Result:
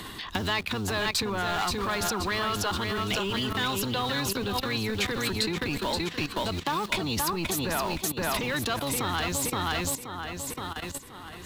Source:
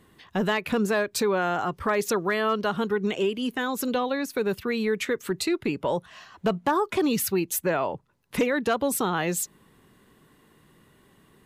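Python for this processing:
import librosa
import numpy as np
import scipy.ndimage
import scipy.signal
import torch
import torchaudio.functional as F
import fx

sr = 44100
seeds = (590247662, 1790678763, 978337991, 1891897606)

p1 = fx.octave_divider(x, sr, octaves=1, level_db=3.0)
p2 = fx.quant_dither(p1, sr, seeds[0], bits=6, dither='none')
p3 = p1 + (p2 * librosa.db_to_amplitude(-10.0))
p4 = fx.high_shelf(p3, sr, hz=6300.0, db=2.5)
p5 = p4 + fx.echo_feedback(p4, sr, ms=524, feedback_pct=39, wet_db=-7.0, dry=0)
p6 = fx.level_steps(p5, sr, step_db=15)
p7 = 10.0 ** (-23.5 / 20.0) * np.tanh(p6 / 10.0 ** (-23.5 / 20.0))
p8 = fx.graphic_eq(p7, sr, hz=(125, 500, 1000, 4000), db=(-8, -5, 4, 10))
p9 = fx.band_squash(p8, sr, depth_pct=70)
y = p9 * librosa.db_to_amplitude(3.5)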